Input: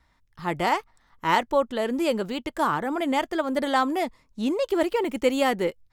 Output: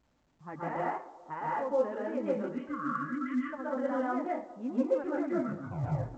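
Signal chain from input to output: tape stop on the ending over 1.22 s; low-pass 1.8 kHz 24 dB/octave; spectral selection erased 2.32–3.39 s, 340–1100 Hz; high-pass 60 Hz 12 dB/octave; bass shelf 83 Hz -9 dB; peak limiter -17.5 dBFS, peak gain reduction 8 dB; level-controlled noise filter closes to 470 Hz, open at -24 dBFS; flange 1.9 Hz, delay 3.3 ms, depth 4.6 ms, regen +28%; feedback echo behind a band-pass 192 ms, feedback 65%, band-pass 580 Hz, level -17.5 dB; reverberation RT60 0.35 s, pre-delay 113 ms, DRR -5.5 dB; speed mistake 25 fps video run at 24 fps; trim -8.5 dB; A-law 128 kbps 16 kHz

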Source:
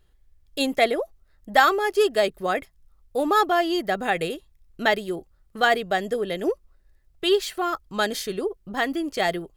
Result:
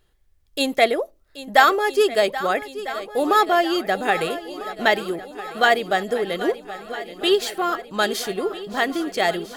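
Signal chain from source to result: bass shelf 140 Hz -8 dB; shuffle delay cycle 1299 ms, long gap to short 1.5:1, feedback 56%, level -14.5 dB; on a send at -23 dB: reverberation RT60 0.25 s, pre-delay 9 ms; on the sum: trim +3 dB

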